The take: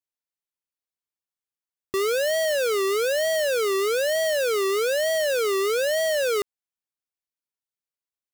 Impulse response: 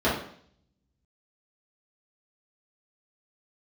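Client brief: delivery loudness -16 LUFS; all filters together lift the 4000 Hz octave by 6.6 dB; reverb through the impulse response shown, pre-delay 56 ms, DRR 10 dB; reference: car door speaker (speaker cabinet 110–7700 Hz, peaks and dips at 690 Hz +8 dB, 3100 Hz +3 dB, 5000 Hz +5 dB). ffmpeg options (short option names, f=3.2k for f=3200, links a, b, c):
-filter_complex "[0:a]equalizer=f=4k:t=o:g=5,asplit=2[a][b];[1:a]atrim=start_sample=2205,adelay=56[c];[b][c]afir=irnorm=-1:irlink=0,volume=-26dB[d];[a][d]amix=inputs=2:normalize=0,highpass=110,equalizer=f=690:t=q:w=4:g=8,equalizer=f=3.1k:t=q:w=4:g=3,equalizer=f=5k:t=q:w=4:g=5,lowpass=f=7.7k:w=0.5412,lowpass=f=7.7k:w=1.3066,volume=2.5dB"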